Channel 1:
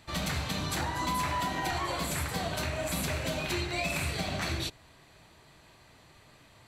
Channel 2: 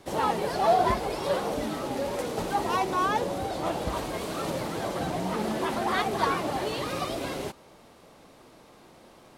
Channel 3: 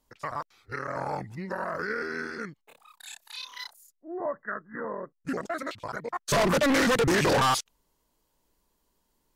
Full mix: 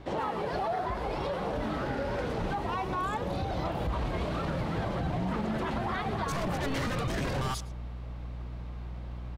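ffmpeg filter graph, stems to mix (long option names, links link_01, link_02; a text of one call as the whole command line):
ffmpeg -i stem1.wav -i stem2.wav -i stem3.wav -filter_complex "[1:a]aeval=exprs='val(0)+0.00282*(sin(2*PI*60*n/s)+sin(2*PI*2*60*n/s)/2+sin(2*PI*3*60*n/s)/3+sin(2*PI*4*60*n/s)/4+sin(2*PI*5*60*n/s)/5)':channel_layout=same,volume=2.5dB,asplit=2[link_01][link_02];[link_02]volume=-22dB[link_03];[2:a]volume=-10dB,asplit=2[link_04][link_05];[link_05]volume=-21dB[link_06];[link_01]lowpass=3200,acompressor=threshold=-28dB:ratio=6,volume=0dB[link_07];[link_03][link_06]amix=inputs=2:normalize=0,aecho=0:1:110:1[link_08];[link_04][link_07][link_08]amix=inputs=3:normalize=0,asubboost=boost=4.5:cutoff=160,alimiter=limit=-23dB:level=0:latency=1:release=28" out.wav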